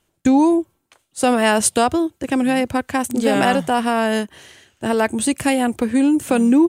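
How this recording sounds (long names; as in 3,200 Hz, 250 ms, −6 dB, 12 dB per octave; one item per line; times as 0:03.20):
background noise floor −70 dBFS
spectral slope −4.0 dB per octave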